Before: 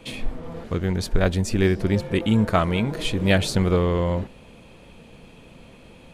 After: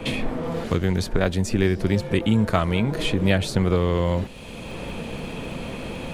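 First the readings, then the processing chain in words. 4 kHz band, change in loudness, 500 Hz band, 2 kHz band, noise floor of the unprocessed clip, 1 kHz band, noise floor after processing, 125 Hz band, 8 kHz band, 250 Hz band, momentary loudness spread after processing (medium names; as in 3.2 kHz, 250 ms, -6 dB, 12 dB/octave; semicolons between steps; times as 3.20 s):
0.0 dB, -1.5 dB, 0.0 dB, 0.0 dB, -48 dBFS, -0.5 dB, -36 dBFS, +0.5 dB, -1.0 dB, +0.5 dB, 12 LU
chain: crackle 33 per s -50 dBFS; three bands compressed up and down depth 70%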